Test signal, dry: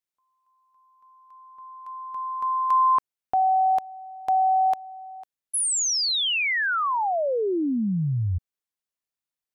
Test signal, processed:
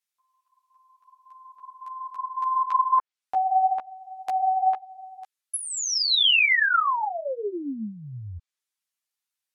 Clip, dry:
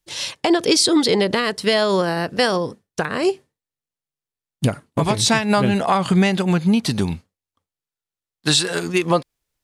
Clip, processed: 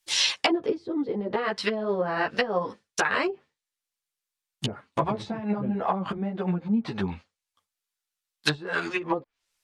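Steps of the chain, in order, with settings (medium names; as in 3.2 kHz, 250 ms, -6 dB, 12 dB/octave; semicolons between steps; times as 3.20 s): low-pass that closes with the level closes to 330 Hz, closed at -13 dBFS; tilt shelf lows -9 dB, about 640 Hz; three-phase chorus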